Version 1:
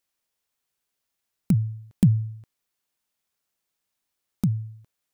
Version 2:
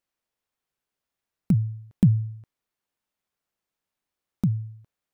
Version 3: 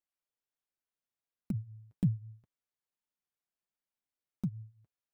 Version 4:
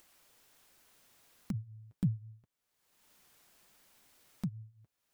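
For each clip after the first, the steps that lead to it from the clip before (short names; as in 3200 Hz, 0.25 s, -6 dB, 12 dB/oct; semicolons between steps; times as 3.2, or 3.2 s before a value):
high shelf 3000 Hz -9.5 dB
flange 1.3 Hz, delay 2.9 ms, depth 5.6 ms, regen -33%; gain -8 dB
upward compressor, threshold -40 dBFS; gain -2 dB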